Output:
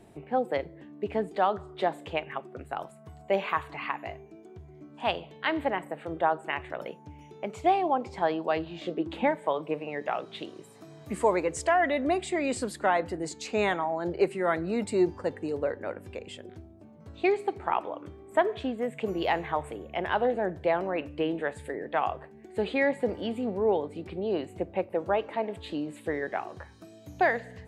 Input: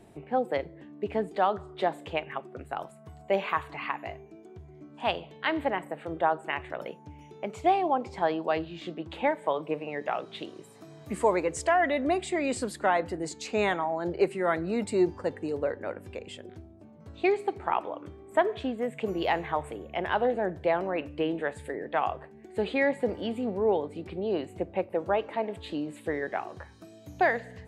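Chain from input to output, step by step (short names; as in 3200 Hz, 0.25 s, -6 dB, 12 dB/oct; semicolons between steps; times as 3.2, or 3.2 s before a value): 8.65–9.37 bell 1000 Hz -> 140 Hz +11.5 dB 0.68 oct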